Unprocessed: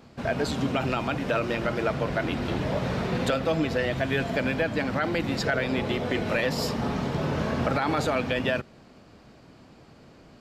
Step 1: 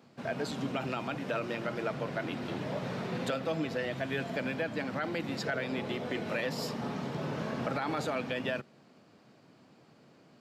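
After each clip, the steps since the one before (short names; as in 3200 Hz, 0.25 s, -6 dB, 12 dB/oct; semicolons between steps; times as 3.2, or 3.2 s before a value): HPF 120 Hz 24 dB/oct; gain -7.5 dB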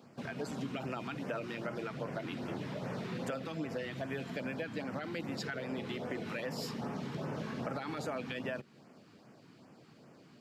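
compressor 2:1, threshold -41 dBFS, peak gain reduction 7.5 dB; LFO notch sine 2.5 Hz 550–4100 Hz; gain +2 dB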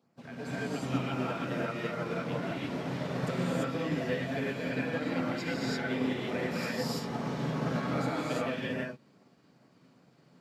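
non-linear reverb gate 0.37 s rising, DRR -7.5 dB; upward expander 1.5:1, over -56 dBFS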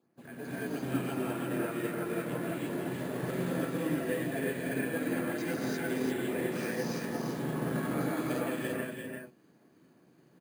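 small resonant body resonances 340/1700 Hz, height 10 dB, ringing for 35 ms; on a send: echo 0.343 s -5 dB; on the sum: careless resampling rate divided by 4×, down filtered, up hold; gain -4.5 dB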